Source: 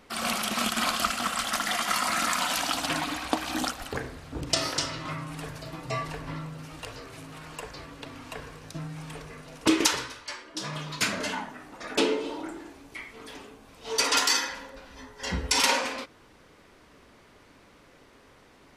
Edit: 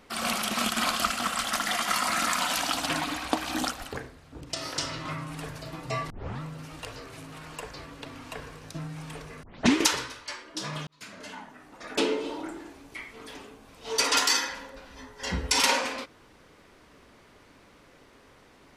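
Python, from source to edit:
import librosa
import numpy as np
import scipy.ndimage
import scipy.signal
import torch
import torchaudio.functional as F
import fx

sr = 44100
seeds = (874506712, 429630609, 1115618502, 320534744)

y = fx.edit(x, sr, fx.fade_down_up(start_s=3.77, length_s=1.16, db=-8.5, fade_s=0.36),
    fx.tape_start(start_s=6.1, length_s=0.31),
    fx.tape_start(start_s=9.43, length_s=0.33),
    fx.fade_in_span(start_s=10.87, length_s=1.4), tone=tone)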